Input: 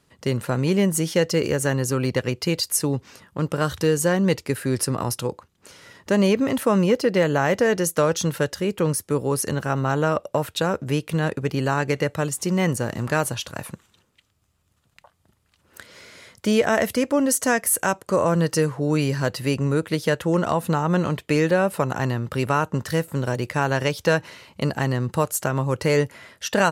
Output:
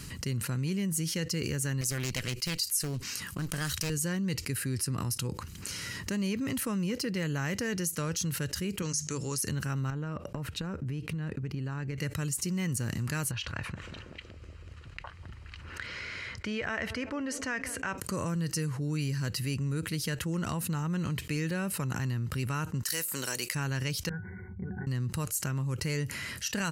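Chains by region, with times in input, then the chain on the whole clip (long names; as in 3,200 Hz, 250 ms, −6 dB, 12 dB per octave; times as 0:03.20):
0:01.81–0:03.90: spectral tilt +2 dB per octave + highs frequency-modulated by the lows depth 0.69 ms
0:08.82–0:09.38: low-pass with resonance 6,500 Hz, resonance Q 6.6 + low-shelf EQ 400 Hz −8.5 dB + mains-hum notches 50/100/150/200/250 Hz
0:09.90–0:11.98: low-pass filter 1,400 Hz 6 dB per octave + transient designer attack +5 dB, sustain −1 dB + downward compressor 4 to 1, threshold −30 dBFS
0:13.31–0:17.98: low-pass filter 2,400 Hz + parametric band 190 Hz −10.5 dB 2 octaves + feedback echo with a band-pass in the loop 187 ms, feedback 77%, band-pass 390 Hz, level −19.5 dB
0:22.83–0:23.55: high-pass filter 470 Hz + high-shelf EQ 4,700 Hz +11.5 dB
0:24.09–0:24.87: linear-phase brick-wall band-stop 2,300–12,000 Hz + resonances in every octave F#, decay 0.15 s
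whole clip: guitar amp tone stack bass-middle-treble 6-0-2; notch filter 3,500 Hz, Q 6.9; envelope flattener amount 70%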